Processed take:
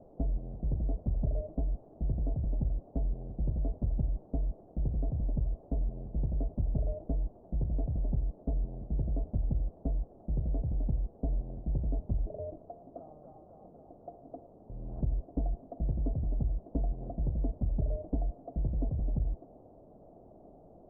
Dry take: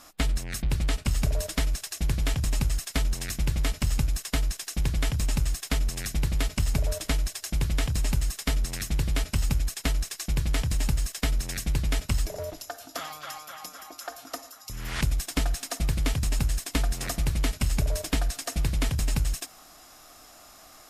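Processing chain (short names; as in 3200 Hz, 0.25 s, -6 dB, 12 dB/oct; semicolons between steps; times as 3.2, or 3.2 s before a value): requantised 6-bit, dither triangular; elliptic low-pass 680 Hz, stop band 70 dB; gain -4.5 dB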